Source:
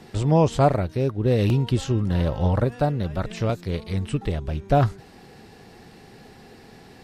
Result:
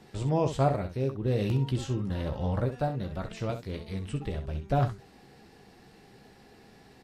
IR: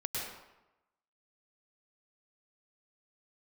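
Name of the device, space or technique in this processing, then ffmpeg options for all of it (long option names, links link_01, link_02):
slapback doubling: -filter_complex "[0:a]asplit=3[link_01][link_02][link_03];[link_02]adelay=15,volume=-8dB[link_04];[link_03]adelay=65,volume=-9.5dB[link_05];[link_01][link_04][link_05]amix=inputs=3:normalize=0,volume=-8.5dB"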